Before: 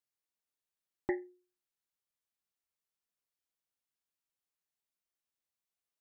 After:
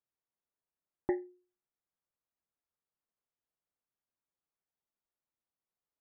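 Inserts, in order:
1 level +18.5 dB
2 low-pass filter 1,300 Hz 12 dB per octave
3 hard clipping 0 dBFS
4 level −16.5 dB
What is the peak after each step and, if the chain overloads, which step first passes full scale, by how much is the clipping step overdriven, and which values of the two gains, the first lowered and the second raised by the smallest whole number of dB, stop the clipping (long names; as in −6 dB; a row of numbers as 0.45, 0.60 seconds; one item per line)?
−2.5, −3.0, −3.0, −19.5 dBFS
no step passes full scale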